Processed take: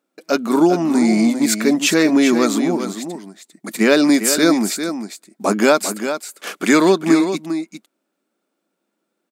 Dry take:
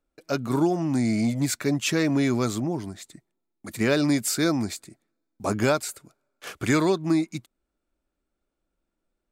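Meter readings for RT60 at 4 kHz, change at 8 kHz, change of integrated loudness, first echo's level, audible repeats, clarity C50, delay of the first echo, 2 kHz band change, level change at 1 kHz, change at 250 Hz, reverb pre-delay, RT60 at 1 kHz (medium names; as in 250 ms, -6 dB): no reverb, +9.5 dB, +8.5 dB, -9.0 dB, 1, no reverb, 399 ms, +9.5 dB, +9.5 dB, +9.0 dB, no reverb, no reverb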